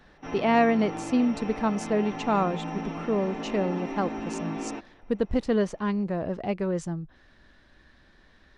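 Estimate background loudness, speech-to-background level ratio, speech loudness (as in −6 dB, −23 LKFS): −35.0 LKFS, 7.5 dB, −27.5 LKFS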